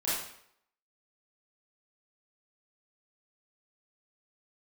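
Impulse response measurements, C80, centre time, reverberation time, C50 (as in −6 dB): 4.0 dB, 67 ms, 0.70 s, −1.0 dB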